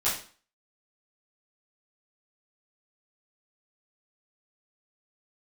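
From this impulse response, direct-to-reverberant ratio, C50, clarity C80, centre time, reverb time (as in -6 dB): -11.0 dB, 5.5 dB, 10.0 dB, 36 ms, 0.40 s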